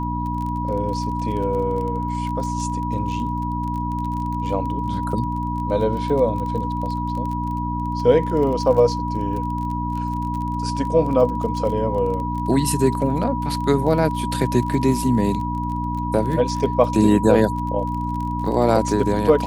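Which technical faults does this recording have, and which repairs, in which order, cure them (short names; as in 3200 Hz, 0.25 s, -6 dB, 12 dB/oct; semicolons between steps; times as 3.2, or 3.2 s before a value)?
crackle 29/s -28 dBFS
hum 60 Hz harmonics 5 -26 dBFS
tone 970 Hz -26 dBFS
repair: de-click; de-hum 60 Hz, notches 5; notch 970 Hz, Q 30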